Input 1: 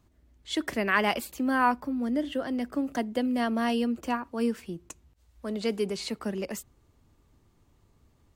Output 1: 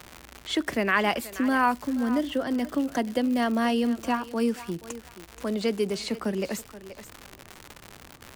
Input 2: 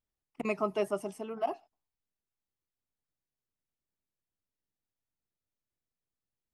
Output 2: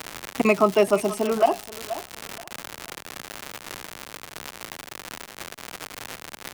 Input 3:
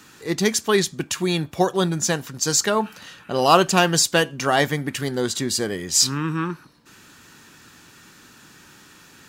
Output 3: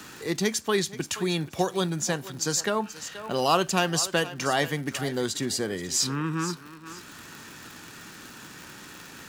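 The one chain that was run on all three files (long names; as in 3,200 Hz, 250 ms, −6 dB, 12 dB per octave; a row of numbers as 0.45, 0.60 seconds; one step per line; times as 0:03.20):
feedback echo with a high-pass in the loop 478 ms, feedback 15%, high-pass 390 Hz, level −16 dB
surface crackle 170 per second −36 dBFS
multiband upward and downward compressor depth 40%
loudness normalisation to −27 LKFS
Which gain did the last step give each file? +2.5, +16.0, −5.5 decibels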